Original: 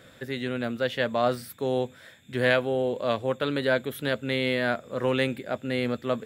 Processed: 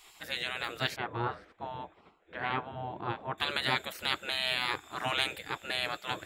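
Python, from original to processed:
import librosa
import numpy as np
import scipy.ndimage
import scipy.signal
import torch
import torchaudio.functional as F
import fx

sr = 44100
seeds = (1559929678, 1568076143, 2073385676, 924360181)

y = fx.spec_gate(x, sr, threshold_db=-15, keep='weak')
y = fx.lowpass(y, sr, hz=1300.0, slope=12, at=(0.96, 3.38))
y = y * librosa.db_to_amplitude(5.0)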